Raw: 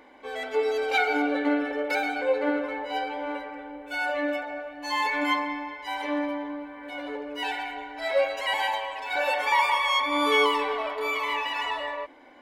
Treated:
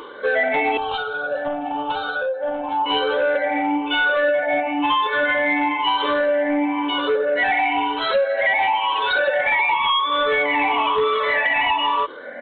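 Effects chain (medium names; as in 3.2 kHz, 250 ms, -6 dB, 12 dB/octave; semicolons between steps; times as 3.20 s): drifting ripple filter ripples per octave 0.64, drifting +1 Hz, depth 21 dB; high-pass 180 Hz 6 dB/octave; compression 12:1, threshold -28 dBFS, peak gain reduction 18.5 dB; sine folder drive 5 dB, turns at -18.5 dBFS; resampled via 8 kHz; 0.77–2.86 s: static phaser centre 880 Hz, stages 4; trim +5 dB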